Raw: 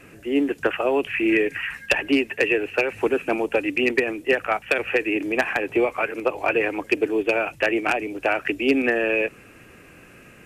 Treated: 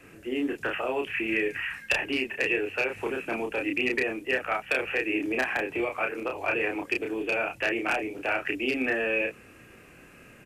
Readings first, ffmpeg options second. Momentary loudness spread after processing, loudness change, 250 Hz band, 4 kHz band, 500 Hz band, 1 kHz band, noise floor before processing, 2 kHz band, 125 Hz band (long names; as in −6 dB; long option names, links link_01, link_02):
4 LU, −5.5 dB, −7.5 dB, −4.0 dB, −8.0 dB, −6.0 dB, −48 dBFS, −4.0 dB, −4.5 dB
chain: -filter_complex "[0:a]acrossover=split=160|1000[link_01][link_02][link_03];[link_02]alimiter=limit=-20dB:level=0:latency=1[link_04];[link_01][link_04][link_03]amix=inputs=3:normalize=0,asplit=2[link_05][link_06];[link_06]adelay=31,volume=-3dB[link_07];[link_05][link_07]amix=inputs=2:normalize=0,volume=-5.5dB"